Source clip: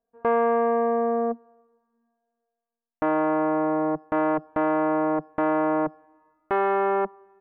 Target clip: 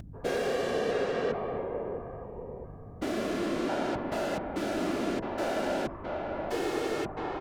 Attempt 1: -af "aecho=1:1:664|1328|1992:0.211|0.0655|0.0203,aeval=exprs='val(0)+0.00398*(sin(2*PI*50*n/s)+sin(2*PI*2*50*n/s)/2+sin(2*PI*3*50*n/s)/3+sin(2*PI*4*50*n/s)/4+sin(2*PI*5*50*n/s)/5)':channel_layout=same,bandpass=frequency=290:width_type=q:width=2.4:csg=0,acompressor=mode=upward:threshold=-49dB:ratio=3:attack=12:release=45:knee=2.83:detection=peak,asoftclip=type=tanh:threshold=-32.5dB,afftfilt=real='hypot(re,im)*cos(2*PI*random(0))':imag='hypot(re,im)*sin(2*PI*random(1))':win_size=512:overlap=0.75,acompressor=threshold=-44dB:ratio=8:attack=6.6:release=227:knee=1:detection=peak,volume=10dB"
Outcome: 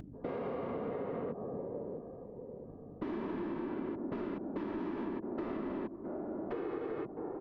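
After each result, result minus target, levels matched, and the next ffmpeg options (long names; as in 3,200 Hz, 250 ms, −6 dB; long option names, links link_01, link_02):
downward compressor: peak gain reduction +10 dB; 250 Hz band +3.5 dB
-af "aecho=1:1:664|1328|1992:0.211|0.0655|0.0203,aeval=exprs='val(0)+0.00398*(sin(2*PI*50*n/s)+sin(2*PI*2*50*n/s)/2+sin(2*PI*3*50*n/s)/3+sin(2*PI*4*50*n/s)/4+sin(2*PI*5*50*n/s)/5)':channel_layout=same,bandpass=frequency=290:width_type=q:width=2.4:csg=0,acompressor=mode=upward:threshold=-49dB:ratio=3:attack=12:release=45:knee=2.83:detection=peak,asoftclip=type=tanh:threshold=-32.5dB,afftfilt=real='hypot(re,im)*cos(2*PI*random(0))':imag='hypot(re,im)*sin(2*PI*random(1))':win_size=512:overlap=0.75,volume=10dB"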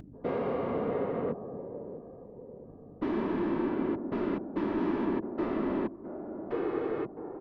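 250 Hz band +3.0 dB
-af "aecho=1:1:664|1328|1992:0.211|0.0655|0.0203,aeval=exprs='val(0)+0.00398*(sin(2*PI*50*n/s)+sin(2*PI*2*50*n/s)/2+sin(2*PI*3*50*n/s)/3+sin(2*PI*4*50*n/s)/4+sin(2*PI*5*50*n/s)/5)':channel_layout=same,acompressor=mode=upward:threshold=-49dB:ratio=3:attack=12:release=45:knee=2.83:detection=peak,asoftclip=type=tanh:threshold=-32.5dB,afftfilt=real='hypot(re,im)*cos(2*PI*random(0))':imag='hypot(re,im)*sin(2*PI*random(1))':win_size=512:overlap=0.75,volume=10dB"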